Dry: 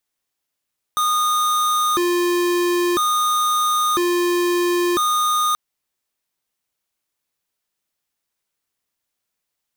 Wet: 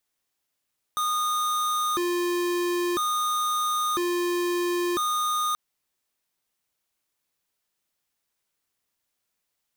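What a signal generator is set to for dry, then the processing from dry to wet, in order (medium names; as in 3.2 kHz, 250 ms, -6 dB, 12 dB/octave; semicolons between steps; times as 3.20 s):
siren hi-lo 351–1230 Hz 0.5 per s square -18.5 dBFS 4.58 s
peak limiter -25.5 dBFS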